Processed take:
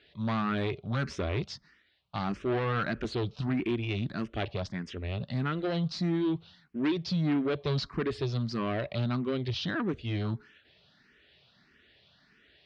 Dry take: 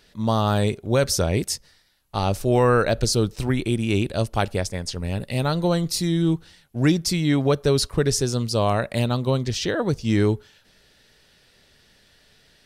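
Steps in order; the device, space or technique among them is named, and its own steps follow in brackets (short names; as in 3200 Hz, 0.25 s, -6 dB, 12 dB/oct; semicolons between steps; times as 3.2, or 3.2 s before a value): barber-pole phaser into a guitar amplifier (endless phaser +1.6 Hz; soft clip -23 dBFS, distortion -10 dB; speaker cabinet 82–3900 Hz, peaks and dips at 100 Hz -4 dB, 500 Hz -7 dB, 870 Hz -6 dB)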